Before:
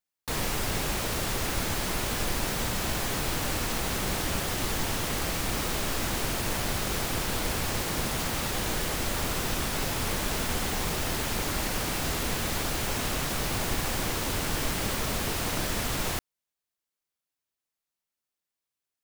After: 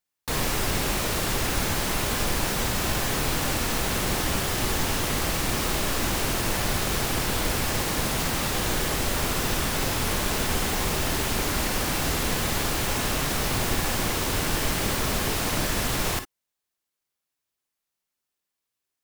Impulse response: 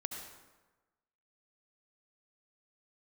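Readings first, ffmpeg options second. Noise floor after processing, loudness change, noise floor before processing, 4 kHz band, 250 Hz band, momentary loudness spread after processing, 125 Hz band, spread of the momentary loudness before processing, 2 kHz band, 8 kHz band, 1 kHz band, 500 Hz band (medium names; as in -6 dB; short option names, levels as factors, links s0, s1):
-85 dBFS, +4.0 dB, under -85 dBFS, +4.0 dB, +4.0 dB, 0 LU, +4.0 dB, 0 LU, +4.0 dB, +4.0 dB, +4.0 dB, +4.0 dB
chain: -filter_complex "[1:a]atrim=start_sample=2205,afade=t=out:st=0.13:d=0.01,atrim=end_sample=6174,asetrate=61740,aresample=44100[s0];[0:a][s0]afir=irnorm=-1:irlink=0,volume=2.66"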